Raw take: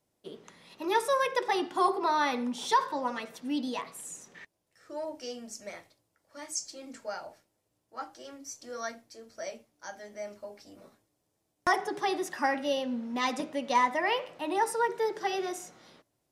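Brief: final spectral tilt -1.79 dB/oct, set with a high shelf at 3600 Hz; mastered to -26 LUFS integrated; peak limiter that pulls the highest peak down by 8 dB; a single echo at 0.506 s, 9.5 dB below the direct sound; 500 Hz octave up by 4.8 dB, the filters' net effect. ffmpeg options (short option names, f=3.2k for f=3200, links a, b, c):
-af "equalizer=f=500:t=o:g=6,highshelf=f=3.6k:g=-7.5,alimiter=limit=-19.5dB:level=0:latency=1,aecho=1:1:506:0.335,volume=5.5dB"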